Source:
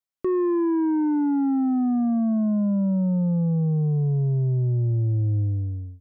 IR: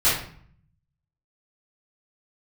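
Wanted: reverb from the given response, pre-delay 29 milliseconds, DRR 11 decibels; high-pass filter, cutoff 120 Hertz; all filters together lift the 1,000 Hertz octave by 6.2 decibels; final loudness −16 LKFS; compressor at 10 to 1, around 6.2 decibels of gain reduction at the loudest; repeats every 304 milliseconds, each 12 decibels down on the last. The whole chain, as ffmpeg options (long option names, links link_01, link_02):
-filter_complex "[0:a]highpass=120,equalizer=frequency=1000:width_type=o:gain=7.5,acompressor=threshold=-25dB:ratio=10,aecho=1:1:304|608|912:0.251|0.0628|0.0157,asplit=2[link_01][link_02];[1:a]atrim=start_sample=2205,adelay=29[link_03];[link_02][link_03]afir=irnorm=-1:irlink=0,volume=-27.5dB[link_04];[link_01][link_04]amix=inputs=2:normalize=0,volume=12.5dB"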